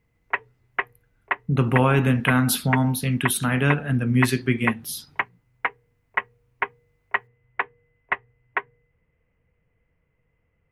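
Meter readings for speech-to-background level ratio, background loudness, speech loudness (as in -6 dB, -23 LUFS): 8.0 dB, -30.0 LUFS, -22.0 LUFS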